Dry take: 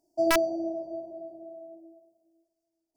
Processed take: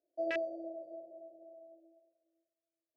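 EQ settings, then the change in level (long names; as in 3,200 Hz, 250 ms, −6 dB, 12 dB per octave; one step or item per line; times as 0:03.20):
formant filter e
high-frequency loss of the air 83 metres
parametric band 66 Hz +8 dB 1.7 octaves
+2.5 dB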